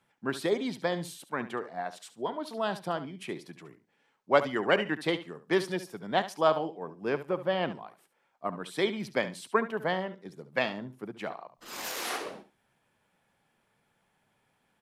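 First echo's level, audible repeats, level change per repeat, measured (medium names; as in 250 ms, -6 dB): -13.5 dB, 2, -16.0 dB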